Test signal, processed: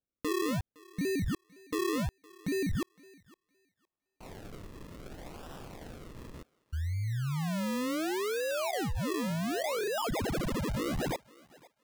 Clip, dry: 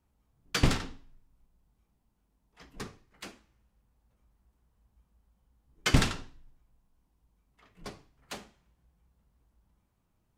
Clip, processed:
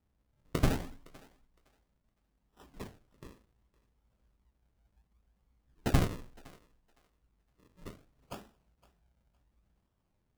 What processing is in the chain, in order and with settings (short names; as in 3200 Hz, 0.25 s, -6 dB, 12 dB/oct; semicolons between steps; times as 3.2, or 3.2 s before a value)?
decimation with a swept rate 40×, swing 100% 0.68 Hz; on a send: thinning echo 0.512 s, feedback 20%, high-pass 400 Hz, level -21.5 dB; on the sum: gain -3 dB